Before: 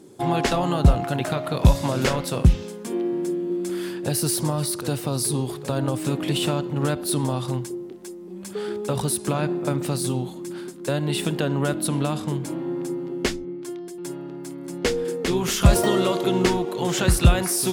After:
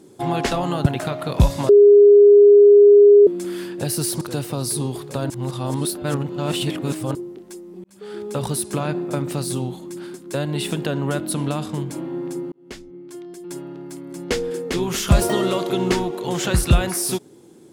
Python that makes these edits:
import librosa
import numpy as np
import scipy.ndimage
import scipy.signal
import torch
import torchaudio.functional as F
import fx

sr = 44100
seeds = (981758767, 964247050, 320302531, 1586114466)

y = fx.edit(x, sr, fx.cut(start_s=0.86, length_s=0.25),
    fx.bleep(start_s=1.94, length_s=1.58, hz=409.0, db=-6.0),
    fx.cut(start_s=4.46, length_s=0.29),
    fx.reverse_span(start_s=5.84, length_s=1.85),
    fx.fade_in_span(start_s=8.38, length_s=0.46),
    fx.fade_in_span(start_s=13.06, length_s=0.95), tone=tone)